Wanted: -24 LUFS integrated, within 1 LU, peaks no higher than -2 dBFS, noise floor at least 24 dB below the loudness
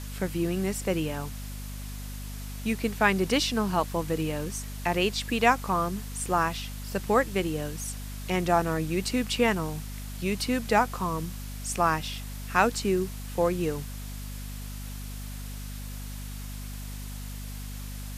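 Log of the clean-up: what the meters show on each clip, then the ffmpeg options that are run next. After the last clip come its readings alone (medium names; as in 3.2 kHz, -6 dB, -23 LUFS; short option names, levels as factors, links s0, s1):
hum 50 Hz; highest harmonic 250 Hz; hum level -35 dBFS; noise floor -37 dBFS; noise floor target -52 dBFS; loudness -28.0 LUFS; peak level -7.5 dBFS; loudness target -24.0 LUFS
-> -af "bandreject=f=50:t=h:w=6,bandreject=f=100:t=h:w=6,bandreject=f=150:t=h:w=6,bandreject=f=200:t=h:w=6,bandreject=f=250:t=h:w=6"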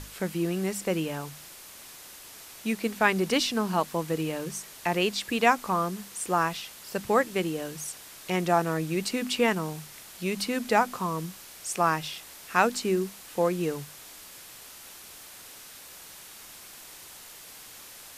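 hum not found; noise floor -47 dBFS; noise floor target -52 dBFS
-> -af "afftdn=nr=6:nf=-47"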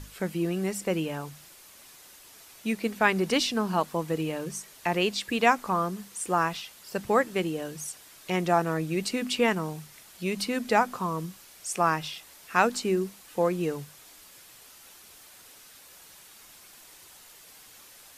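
noise floor -52 dBFS; loudness -28.0 LUFS; peak level -7.0 dBFS; loudness target -24.0 LUFS
-> -af "volume=1.58"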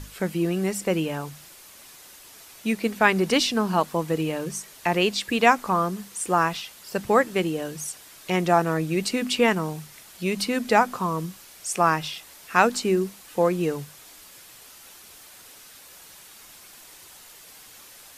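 loudness -24.0 LUFS; peak level -3.0 dBFS; noise floor -48 dBFS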